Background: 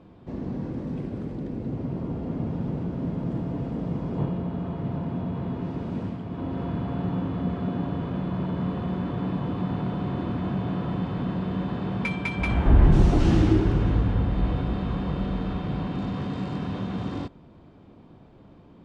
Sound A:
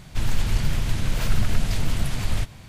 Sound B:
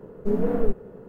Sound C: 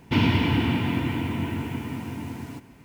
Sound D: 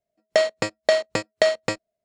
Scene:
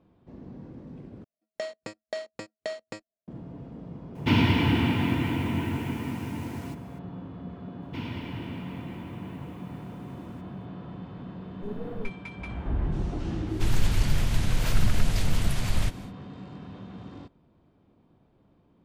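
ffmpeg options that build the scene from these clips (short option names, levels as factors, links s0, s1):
-filter_complex "[3:a]asplit=2[s0][s1];[0:a]volume=0.251[s2];[4:a]equalizer=f=250:t=o:w=0.97:g=6[s3];[s2]asplit=2[s4][s5];[s4]atrim=end=1.244[s6];[s3]atrim=end=2.04,asetpts=PTS-STARTPTS,volume=0.158[s7];[s5]atrim=start=3.276[s8];[s0]atrim=end=2.84,asetpts=PTS-STARTPTS,volume=0.944,afade=t=in:d=0.004:c=hsin,afade=t=out:st=2.836:d=0.004:c=hsin,adelay=4150[s9];[s1]atrim=end=2.84,asetpts=PTS-STARTPTS,volume=0.168,afade=t=in:d=0.004:c=hsin,afade=t=out:st=2.836:d=0.004:c=hsin,adelay=7820[s10];[2:a]atrim=end=1.08,asetpts=PTS-STARTPTS,volume=0.211,afade=t=in:d=0.004:c=hsin,afade=t=out:st=1.076:d=0.004:c=hsin,adelay=11370[s11];[1:a]atrim=end=2.68,asetpts=PTS-STARTPTS,volume=0.841,afade=t=in:d=0.1,afade=t=out:st=2.58:d=0.1,adelay=13450[s12];[s6][s7]acrossfade=d=0.004:c1=hsin:c2=hsin[s13];[s13][s8]acrossfade=d=0.004:c1=hsin:c2=hsin[s14];[s14][s9][s10][s11][s12]amix=inputs=5:normalize=0"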